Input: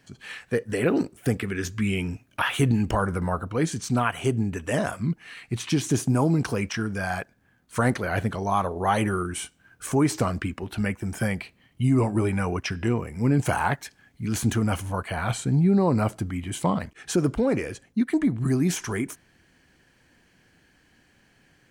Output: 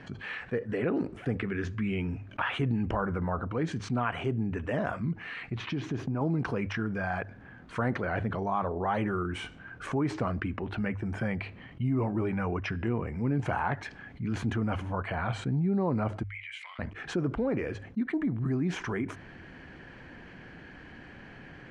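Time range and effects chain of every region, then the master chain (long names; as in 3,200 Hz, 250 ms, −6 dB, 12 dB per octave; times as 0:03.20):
0:05.51–0:06.21: downward compressor 2.5 to 1, threshold −26 dBFS + parametric band 8,600 Hz −14.5 dB 0.73 octaves
0:16.23–0:16.79: downward compressor 2 to 1, threshold −26 dBFS + four-pole ladder high-pass 2,000 Hz, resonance 70%
whole clip: low-pass filter 2,200 Hz 12 dB per octave; mains-hum notches 50/100 Hz; envelope flattener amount 50%; level −8.5 dB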